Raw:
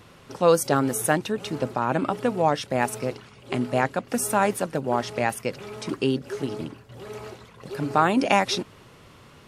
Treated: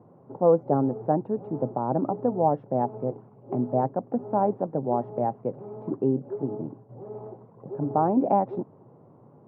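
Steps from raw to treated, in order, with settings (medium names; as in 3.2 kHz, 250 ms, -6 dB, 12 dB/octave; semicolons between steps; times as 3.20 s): Chebyshev band-pass 120–840 Hz, order 3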